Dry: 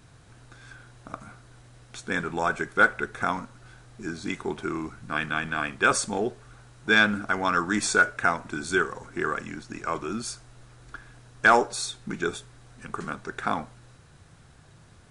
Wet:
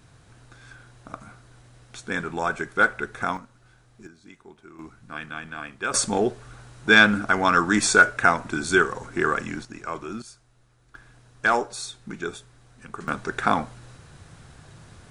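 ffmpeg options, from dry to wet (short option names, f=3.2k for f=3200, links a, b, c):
-af "asetnsamples=n=441:p=0,asendcmd='3.37 volume volume -7dB;4.07 volume volume -17dB;4.79 volume volume -7dB;5.94 volume volume 5dB;9.65 volume volume -2.5dB;10.22 volume volume -11dB;10.95 volume volume -3dB;13.08 volume volume 6dB',volume=0dB"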